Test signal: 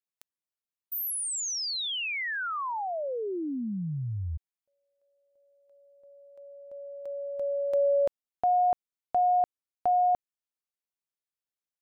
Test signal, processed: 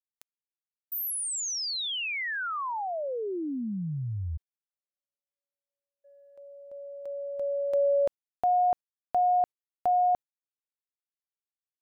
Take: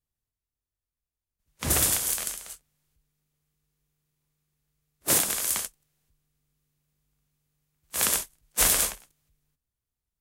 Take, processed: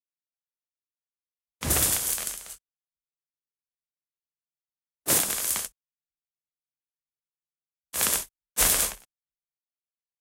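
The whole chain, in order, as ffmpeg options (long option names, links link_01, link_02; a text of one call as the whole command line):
ffmpeg -i in.wav -af "agate=range=-38dB:threshold=-54dB:ratio=16:release=44:detection=rms" out.wav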